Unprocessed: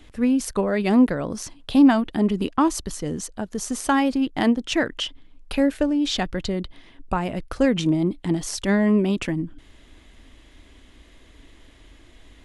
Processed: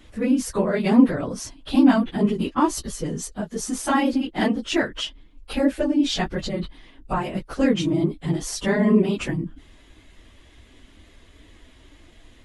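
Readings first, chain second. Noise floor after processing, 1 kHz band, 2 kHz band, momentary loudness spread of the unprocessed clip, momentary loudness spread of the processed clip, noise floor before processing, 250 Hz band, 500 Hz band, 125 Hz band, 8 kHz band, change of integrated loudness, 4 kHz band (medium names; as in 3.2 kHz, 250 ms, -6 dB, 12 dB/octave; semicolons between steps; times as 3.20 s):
-52 dBFS, -0.5 dB, -0.5 dB, 12 LU, 13 LU, -51 dBFS, -0.5 dB, 0.0 dB, +0.5 dB, 0.0 dB, 0.0 dB, -0.5 dB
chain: phase randomisation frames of 50 ms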